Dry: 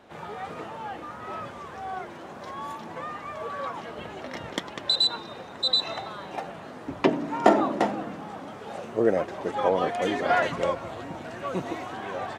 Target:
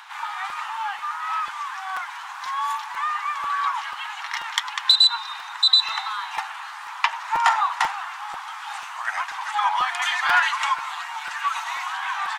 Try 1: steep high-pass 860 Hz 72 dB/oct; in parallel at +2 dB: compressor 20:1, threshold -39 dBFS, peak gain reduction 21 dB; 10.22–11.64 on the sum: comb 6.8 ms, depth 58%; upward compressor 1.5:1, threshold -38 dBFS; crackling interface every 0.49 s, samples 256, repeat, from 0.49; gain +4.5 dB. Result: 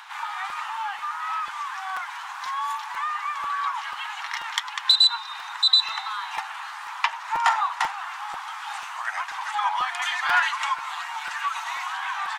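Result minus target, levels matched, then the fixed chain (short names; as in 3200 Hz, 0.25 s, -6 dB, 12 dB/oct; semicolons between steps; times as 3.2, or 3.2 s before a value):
compressor: peak gain reduction +8.5 dB
steep high-pass 860 Hz 72 dB/oct; in parallel at +2 dB: compressor 20:1, threshold -30 dBFS, peak gain reduction 12.5 dB; 10.22–11.64 on the sum: comb 6.8 ms, depth 58%; upward compressor 1.5:1, threshold -38 dBFS; crackling interface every 0.49 s, samples 256, repeat, from 0.49; gain +4.5 dB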